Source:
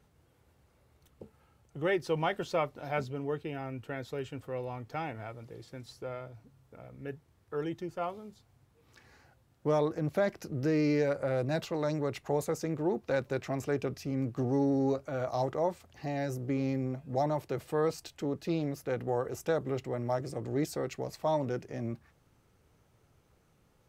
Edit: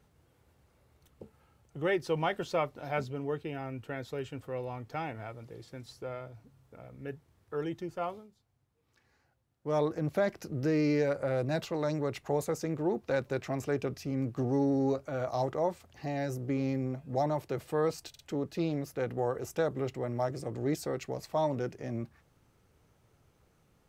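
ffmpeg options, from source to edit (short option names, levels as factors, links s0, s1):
-filter_complex "[0:a]asplit=5[s0][s1][s2][s3][s4];[s0]atrim=end=8.28,asetpts=PTS-STARTPTS,afade=t=out:st=8.14:d=0.14:silence=0.281838[s5];[s1]atrim=start=8.28:end=9.64,asetpts=PTS-STARTPTS,volume=0.282[s6];[s2]atrim=start=9.64:end=18.142,asetpts=PTS-STARTPTS,afade=t=in:d=0.14:silence=0.281838[s7];[s3]atrim=start=18.088:end=18.142[s8];[s4]atrim=start=18.088[s9];[s5][s6][s7]concat=n=3:v=0:a=1[s10];[s10][s8]acrossfade=d=0.004:c1=hsin:c2=hsin[s11];[s11][s9]acrossfade=d=0.004:c1=hsin:c2=hsin"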